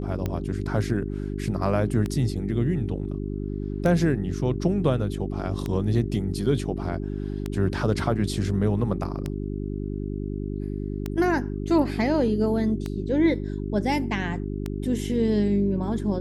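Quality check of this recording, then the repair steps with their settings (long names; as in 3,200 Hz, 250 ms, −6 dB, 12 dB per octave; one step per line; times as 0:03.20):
mains hum 50 Hz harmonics 8 −30 dBFS
scratch tick 33 1/3 rpm −15 dBFS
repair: click removal
hum removal 50 Hz, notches 8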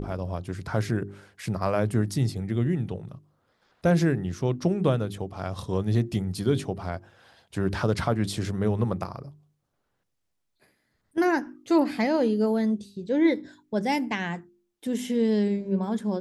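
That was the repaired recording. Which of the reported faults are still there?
none of them is left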